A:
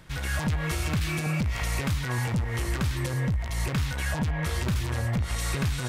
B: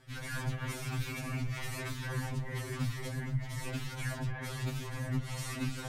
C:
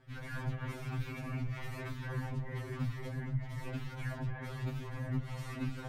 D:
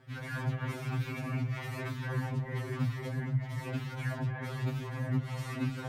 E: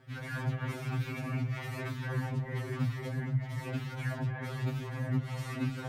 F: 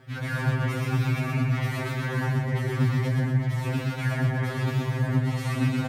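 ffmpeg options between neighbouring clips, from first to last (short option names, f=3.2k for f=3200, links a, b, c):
-af "afftfilt=real='hypot(re,im)*cos(2*PI*random(0))':imag='hypot(re,im)*sin(2*PI*random(1))':win_size=512:overlap=0.75,afftfilt=real='re*2.45*eq(mod(b,6),0)':imag='im*2.45*eq(mod(b,6),0)':win_size=2048:overlap=0.75"
-af "equalizer=f=8.9k:t=o:w=2.4:g=-13.5,volume=-1.5dB"
-af "highpass=53,volume=4.5dB"
-af "bandreject=f=1k:w=17"
-af "aecho=1:1:125|250|375|500|625|750:0.668|0.294|0.129|0.0569|0.0251|0.011,volume=7dB"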